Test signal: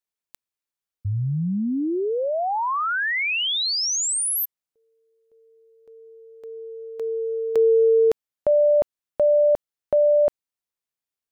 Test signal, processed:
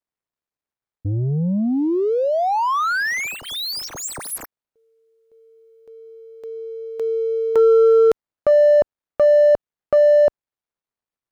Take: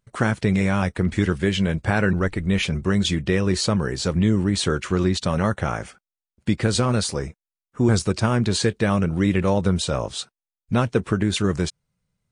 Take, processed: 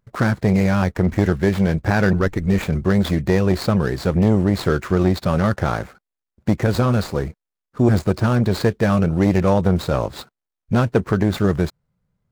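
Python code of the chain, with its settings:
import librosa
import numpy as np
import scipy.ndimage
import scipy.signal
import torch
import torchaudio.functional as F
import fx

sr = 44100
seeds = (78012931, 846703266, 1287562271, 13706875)

y = scipy.signal.medfilt(x, 15)
y = fx.transformer_sat(y, sr, knee_hz=310.0)
y = y * 10.0 ** (5.0 / 20.0)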